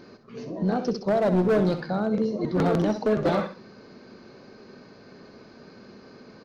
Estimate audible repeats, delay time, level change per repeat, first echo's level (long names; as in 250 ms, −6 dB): 2, 65 ms, −10.0 dB, −10.5 dB